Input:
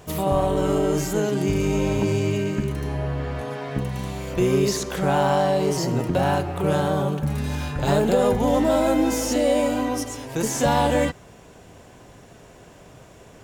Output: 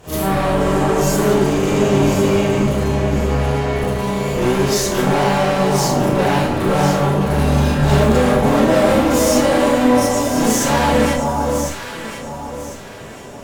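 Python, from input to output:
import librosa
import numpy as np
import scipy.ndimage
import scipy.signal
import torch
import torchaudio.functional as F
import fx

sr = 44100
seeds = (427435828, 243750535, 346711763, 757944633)

y = fx.tube_stage(x, sr, drive_db=26.0, bias=0.55)
y = fx.echo_alternate(y, sr, ms=525, hz=1200.0, feedback_pct=56, wet_db=-3.0)
y = fx.rev_schroeder(y, sr, rt60_s=0.38, comb_ms=28, drr_db=-9.0)
y = y * 10.0 ** (3.0 / 20.0)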